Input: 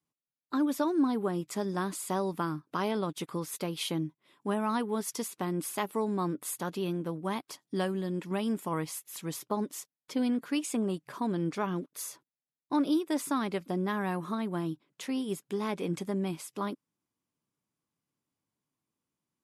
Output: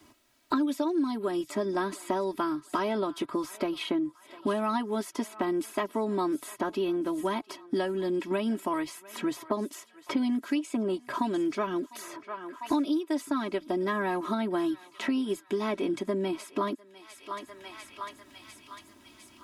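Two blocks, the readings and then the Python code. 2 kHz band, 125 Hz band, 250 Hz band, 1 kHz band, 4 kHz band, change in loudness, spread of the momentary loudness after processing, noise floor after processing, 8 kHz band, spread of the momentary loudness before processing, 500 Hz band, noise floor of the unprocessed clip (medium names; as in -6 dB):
+3.5 dB, -6.0 dB, +2.0 dB, +3.0 dB, +1.5 dB, +2.0 dB, 12 LU, -58 dBFS, -5.5 dB, 9 LU, +4.0 dB, under -85 dBFS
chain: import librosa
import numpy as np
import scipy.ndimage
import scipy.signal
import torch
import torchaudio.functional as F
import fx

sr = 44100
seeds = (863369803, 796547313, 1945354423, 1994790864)

y = fx.lowpass(x, sr, hz=3900.0, slope=6)
y = y + 0.91 * np.pad(y, (int(3.1 * sr / 1000.0), 0))[:len(y)]
y = fx.echo_thinned(y, sr, ms=700, feedback_pct=54, hz=1200.0, wet_db=-21)
y = fx.band_squash(y, sr, depth_pct=100)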